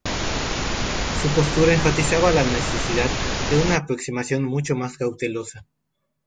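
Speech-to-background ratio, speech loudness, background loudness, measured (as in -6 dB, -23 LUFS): 2.0 dB, -22.5 LUFS, -24.5 LUFS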